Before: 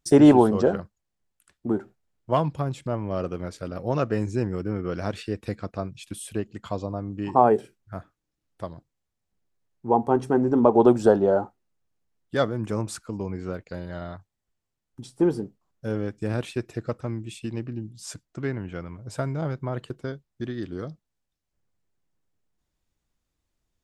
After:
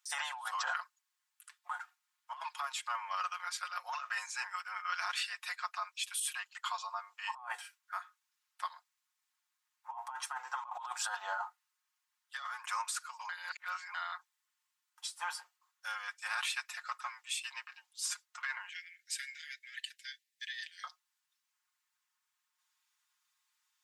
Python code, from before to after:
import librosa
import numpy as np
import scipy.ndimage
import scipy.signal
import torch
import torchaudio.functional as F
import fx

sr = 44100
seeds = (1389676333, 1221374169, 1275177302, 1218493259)

y = fx.steep_highpass(x, sr, hz=1700.0, slope=96, at=(18.69, 20.84))
y = fx.edit(y, sr, fx.reverse_span(start_s=13.29, length_s=0.65), tone=tone)
y = scipy.signal.sosfilt(scipy.signal.butter(8, 940.0, 'highpass', fs=sr, output='sos'), y)
y = y + 0.77 * np.pad(y, (int(5.6 * sr / 1000.0), 0))[:len(y)]
y = fx.over_compress(y, sr, threshold_db=-38.0, ratio=-1.0)